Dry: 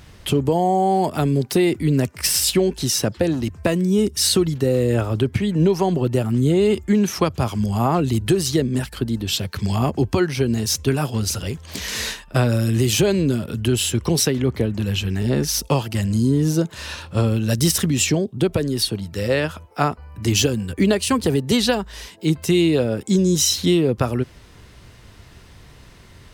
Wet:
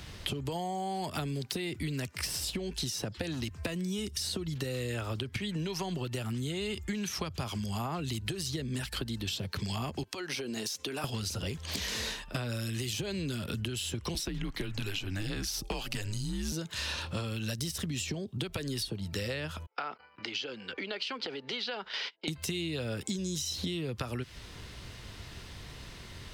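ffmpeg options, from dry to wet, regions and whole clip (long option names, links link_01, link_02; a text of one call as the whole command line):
ffmpeg -i in.wav -filter_complex "[0:a]asettb=1/sr,asplit=3[link_01][link_02][link_03];[link_01]atrim=end=10.034[link_04];[link_02]atrim=start=10.03:end=11.04,asetpts=PTS-STARTPTS,afade=type=in:duration=0.004:curve=qsin,afade=type=out:start_time=1.006:duration=0.004:curve=qsin,highpass=320,acompressor=threshold=-29dB:ratio=10:attack=3.2:release=140:knee=1:detection=peak[link_05];[link_03]atrim=start=11.036[link_06];[link_04][link_05]acrossfade=duration=0.004:curve1=hsin:curve2=qsin[link_07];[link_07][link_06]acrossfade=duration=0.004:curve1=qsin:curve2=hsin,asettb=1/sr,asplit=3[link_08][link_09][link_10];[link_08]atrim=end=14.144[link_11];[link_09]atrim=start=14.14:end=16.52,asetpts=PTS-STARTPTS,afade=type=in:duration=0.004:curve=qsin,afade=type=out:start_time=2.376:duration=0.004:curve=qsin,afreqshift=-95,asoftclip=type=hard:threshold=-10dB[link_12];[link_10]atrim=start=16.516[link_13];[link_11][link_12]acrossfade=duration=0.004:curve1=hsin:curve2=qsin[link_14];[link_14][link_13]acrossfade=duration=0.004:curve1=qsin:curve2=hsin,asettb=1/sr,asplit=3[link_15][link_16][link_17];[link_15]atrim=end=19.664[link_18];[link_16]atrim=start=19.66:end=22.28,asetpts=PTS-STARTPTS,afade=type=in:duration=0.004:curve=qsin,afade=type=out:start_time=2.616:duration=0.004:curve=qsin,agate=range=-30dB:threshold=-38dB:ratio=16:release=100:detection=peak,acompressor=threshold=-32dB:ratio=6:attack=3.2:release=140:knee=1:detection=peak,highpass=360,equalizer=frequency=500:width_type=q:width=4:gain=3,equalizer=frequency=840:width_type=q:width=4:gain=4,equalizer=frequency=1400:width_type=q:width=4:gain=10,equalizer=frequency=2200:width_type=q:width=4:gain=8,equalizer=frequency=3100:width_type=q:width=4:gain=6,equalizer=frequency=4800:width_type=q:width=4:gain=5,lowpass=frequency=4900:width=0.5412,lowpass=frequency=4900:width=1.3066[link_19];[link_17]atrim=start=22.276[link_20];[link_18][link_19]acrossfade=duration=0.004:curve1=hsin:curve2=qsin[link_21];[link_21][link_20]acrossfade=duration=0.004:curve1=qsin:curve2=hsin,acrossover=split=130|1100[link_22][link_23][link_24];[link_22]acompressor=threshold=-33dB:ratio=4[link_25];[link_23]acompressor=threshold=-31dB:ratio=4[link_26];[link_24]acompressor=threshold=-33dB:ratio=4[link_27];[link_25][link_26][link_27]amix=inputs=3:normalize=0,equalizer=frequency=3800:width=0.83:gain=5.5,acompressor=threshold=-30dB:ratio=6,volume=-1.5dB" out.wav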